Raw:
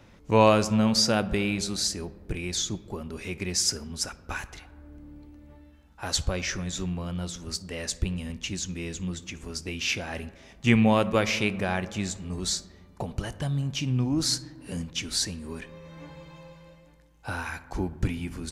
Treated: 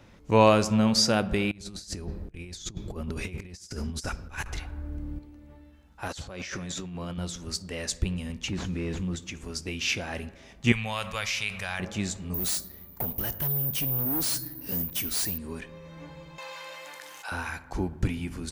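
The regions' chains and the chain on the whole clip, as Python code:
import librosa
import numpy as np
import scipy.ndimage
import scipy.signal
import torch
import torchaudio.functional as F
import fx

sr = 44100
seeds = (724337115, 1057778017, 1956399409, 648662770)

y = fx.chain(x, sr, fx.low_shelf(hz=110.0, db=10.5),
    fx.over_compress(threshold_db=-35.0, ratio=-0.5), at=(1.51, 5.19))
y = fx.chain(y, sr, fx.highpass(hz=150.0, slope=6),
    fx.high_shelf(hz=7900.0, db=-3.5),
    fx.over_compress(threshold_db=-37.0, ratio=-1.0), at=(6.08, 7.18))
y = fx.chain(y, sr, fx.delta_mod(bps=64000, step_db=-49.0),
    fx.lowpass(hz=1900.0, slope=6),
    fx.env_flatten(amount_pct=70), at=(8.48, 9.16))
y = fx.chain(y, sr, fx.tone_stack(knobs='10-0-10'),
    fx.env_flatten(amount_pct=50), at=(10.72, 11.8))
y = fx.chain(y, sr, fx.clip_hard(threshold_db=-30.5),
    fx.resample_bad(factor=3, down='none', up='zero_stuff'), at=(12.34, 15.38))
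y = fx.chain(y, sr, fx.highpass(hz=1000.0, slope=12),
    fx.env_flatten(amount_pct=70), at=(16.38, 17.32))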